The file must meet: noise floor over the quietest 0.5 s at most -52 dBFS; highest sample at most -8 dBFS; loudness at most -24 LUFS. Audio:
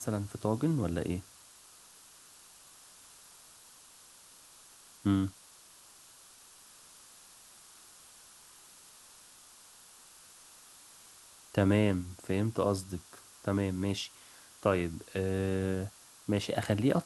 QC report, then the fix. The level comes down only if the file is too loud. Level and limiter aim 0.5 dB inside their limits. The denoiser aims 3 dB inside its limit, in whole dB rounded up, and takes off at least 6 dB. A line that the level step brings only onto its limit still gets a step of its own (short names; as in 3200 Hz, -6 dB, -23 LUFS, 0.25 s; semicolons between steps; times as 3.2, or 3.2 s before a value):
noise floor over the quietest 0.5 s -57 dBFS: OK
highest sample -13.5 dBFS: OK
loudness -32.5 LUFS: OK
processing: none